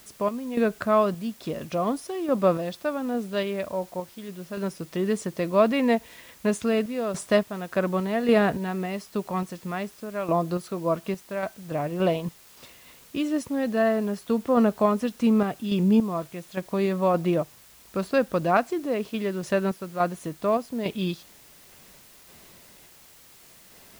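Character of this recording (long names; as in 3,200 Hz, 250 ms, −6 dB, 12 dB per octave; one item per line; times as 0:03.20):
sample-and-hold tremolo, depth 75%
a quantiser's noise floor 10 bits, dither triangular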